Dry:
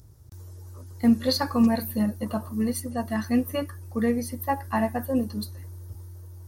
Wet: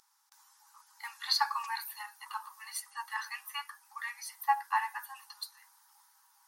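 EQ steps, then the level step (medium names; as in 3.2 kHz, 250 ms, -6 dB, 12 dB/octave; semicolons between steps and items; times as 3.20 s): brick-wall FIR high-pass 790 Hz; treble shelf 9.1 kHz -10 dB; 0.0 dB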